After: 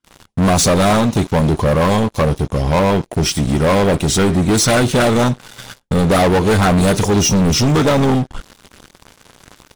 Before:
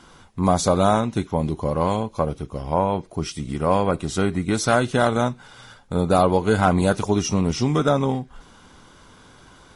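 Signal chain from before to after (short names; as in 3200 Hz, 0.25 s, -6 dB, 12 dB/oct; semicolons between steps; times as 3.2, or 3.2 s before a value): LFO notch saw up 8.6 Hz 670–2100 Hz; gate with hold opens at -41 dBFS; sample leveller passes 5; gain -2.5 dB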